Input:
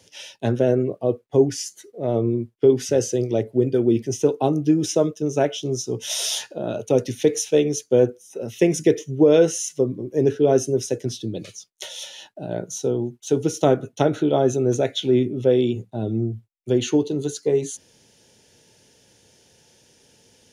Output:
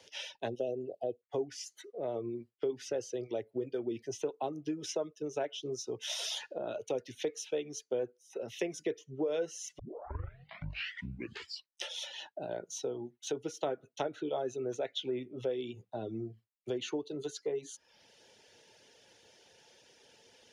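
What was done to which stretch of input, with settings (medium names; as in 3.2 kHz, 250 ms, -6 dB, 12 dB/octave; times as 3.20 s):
0.48–1.23 s: spectral selection erased 810–2500 Hz
9.79 s: tape start 2.19 s
whole clip: reverb removal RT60 0.57 s; three-band isolator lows -13 dB, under 390 Hz, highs -13 dB, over 5.1 kHz; compression 2.5:1, threshold -38 dBFS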